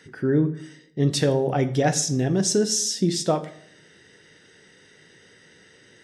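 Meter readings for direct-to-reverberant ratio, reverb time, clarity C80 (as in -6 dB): 9.0 dB, 0.65 s, 18.0 dB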